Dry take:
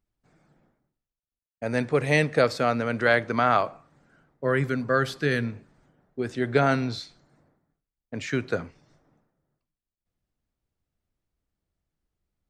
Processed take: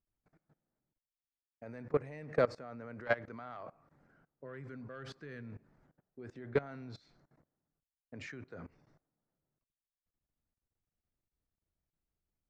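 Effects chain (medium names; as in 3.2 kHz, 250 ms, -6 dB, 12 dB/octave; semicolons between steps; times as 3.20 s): peaking EQ 3.4 kHz -8 dB 0.88 oct, from 1.78 s -14.5 dB, from 3.05 s -8 dB; saturation -12 dBFS, distortion -20 dB; low-pass 4.3 kHz 12 dB/octave; level held to a coarse grid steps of 21 dB; trim -4.5 dB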